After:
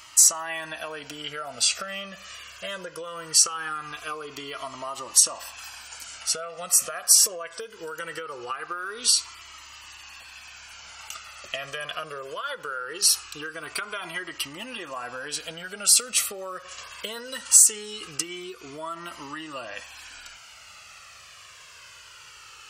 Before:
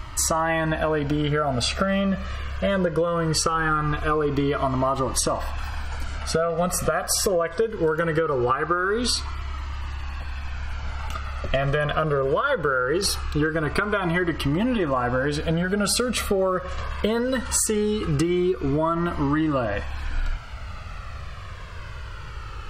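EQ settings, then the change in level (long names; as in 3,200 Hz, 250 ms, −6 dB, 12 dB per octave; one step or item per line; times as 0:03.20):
high-pass filter 1,200 Hz 6 dB per octave
parametric band 2,800 Hz +11.5 dB 0.7 octaves
high shelf with overshoot 4,500 Hz +12.5 dB, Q 1.5
−6.5 dB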